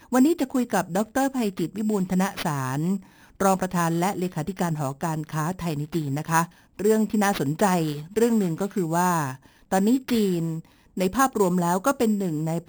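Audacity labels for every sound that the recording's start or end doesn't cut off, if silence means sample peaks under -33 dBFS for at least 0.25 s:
3.400000	6.450000	sound
6.790000	9.350000	sound
9.720000	10.600000	sound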